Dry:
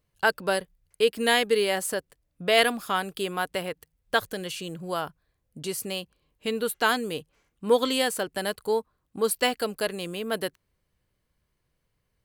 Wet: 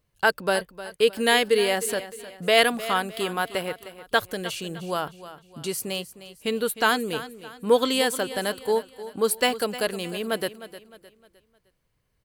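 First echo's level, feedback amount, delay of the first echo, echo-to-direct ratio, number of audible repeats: -14.5 dB, 39%, 0.307 s, -14.0 dB, 3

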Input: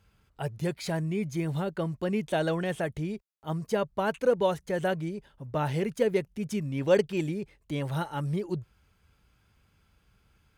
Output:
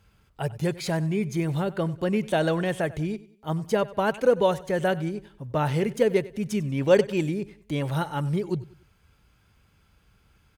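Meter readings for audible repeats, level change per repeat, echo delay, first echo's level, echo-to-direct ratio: 2, -8.5 dB, 95 ms, -19.0 dB, -18.5 dB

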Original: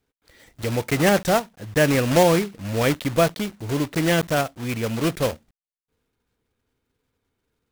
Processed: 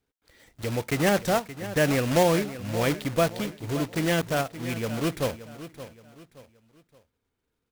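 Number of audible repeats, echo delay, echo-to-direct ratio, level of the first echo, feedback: 3, 0.573 s, -13.5 dB, -14.0 dB, 36%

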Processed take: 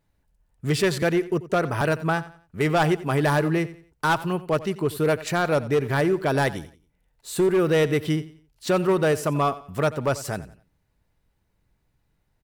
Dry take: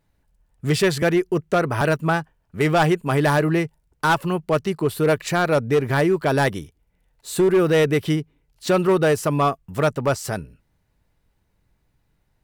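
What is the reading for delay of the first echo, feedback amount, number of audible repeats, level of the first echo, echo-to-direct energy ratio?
89 ms, 33%, 2, -17.0 dB, -16.5 dB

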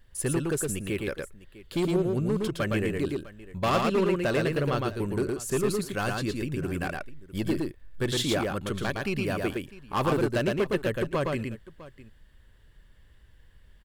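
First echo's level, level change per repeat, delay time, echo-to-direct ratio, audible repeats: -3.0 dB, no steady repeat, 0.113 s, -3.0 dB, 2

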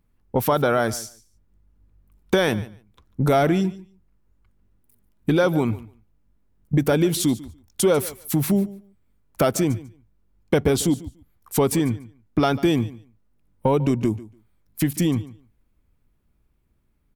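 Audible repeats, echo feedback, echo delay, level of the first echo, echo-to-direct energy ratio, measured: 2, 15%, 0.145 s, -18.5 dB, -18.5 dB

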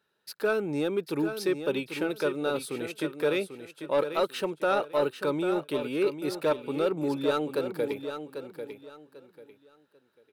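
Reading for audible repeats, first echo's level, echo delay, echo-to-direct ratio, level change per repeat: 3, -9.0 dB, 0.793 s, -8.5 dB, -11.5 dB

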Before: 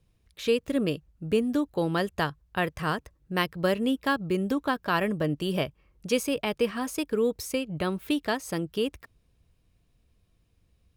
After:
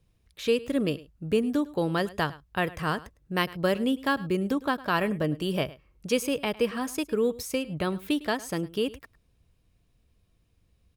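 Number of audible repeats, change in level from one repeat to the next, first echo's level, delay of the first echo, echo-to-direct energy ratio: 1, no steady repeat, -19.5 dB, 0.105 s, -19.5 dB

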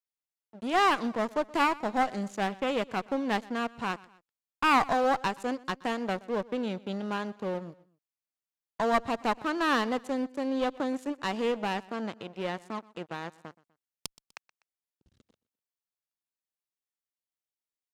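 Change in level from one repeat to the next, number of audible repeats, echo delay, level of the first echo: -6.5 dB, 2, 0.124 s, -22.0 dB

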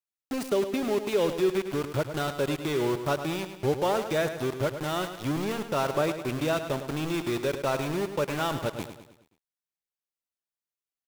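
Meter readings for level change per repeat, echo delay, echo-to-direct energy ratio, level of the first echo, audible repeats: -6.5 dB, 0.105 s, -9.0 dB, -10.0 dB, 4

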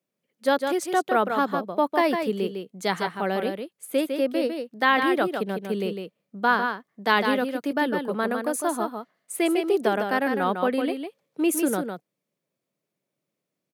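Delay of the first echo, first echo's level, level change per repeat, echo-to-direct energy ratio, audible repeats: 0.154 s, -6.0 dB, no steady repeat, -6.0 dB, 1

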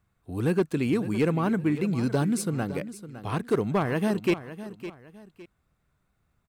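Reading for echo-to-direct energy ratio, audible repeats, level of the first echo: -13.0 dB, 2, -13.5 dB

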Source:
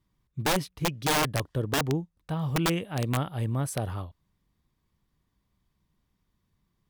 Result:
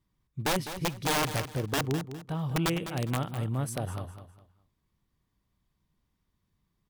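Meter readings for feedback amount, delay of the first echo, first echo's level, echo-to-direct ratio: 29%, 0.204 s, -11.0 dB, -10.5 dB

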